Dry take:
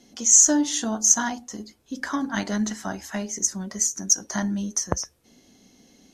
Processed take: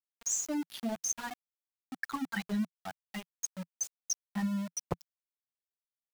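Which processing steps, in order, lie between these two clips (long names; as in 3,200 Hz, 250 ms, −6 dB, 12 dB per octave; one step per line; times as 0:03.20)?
spectral dynamics exaggerated over time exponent 3
parametric band 260 Hz +2.5 dB 2.9 octaves
downward compressor 8 to 1, threshold −31 dBFS, peak gain reduction 16.5 dB
centre clipping without the shift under −39 dBFS
dynamic equaliser 170 Hz, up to +5 dB, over −51 dBFS, Q 2.9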